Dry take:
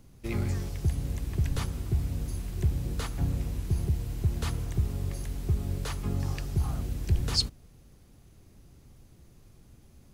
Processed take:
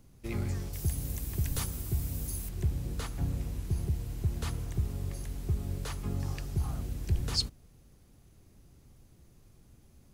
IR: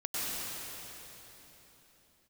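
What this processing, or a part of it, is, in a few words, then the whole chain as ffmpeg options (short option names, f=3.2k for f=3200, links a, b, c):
exciter from parts: -filter_complex "[0:a]asettb=1/sr,asplit=3[a][b][c];[a]atrim=end=0.734[d];[b]atrim=start=0.73:end=2.49,asetpts=PTS-STARTPTS,afade=t=in:d=0.004:c=qsin,afade=t=out:st=1.756:d=0.004:c=qsin,aemphasis=mode=production:type=50fm[e];[c]atrim=start=2.486[f];[d][e]acrossfade=d=0.004:c1=hsin:c2=qsin[g];[g][f]acrossfade=d=0.004:c1=qsin:c2=hsin,asplit=2[h][i];[i]highpass=4.9k,asoftclip=type=tanh:threshold=-34.5dB,volume=-12.5dB[j];[h][j]amix=inputs=2:normalize=0,volume=-3.5dB"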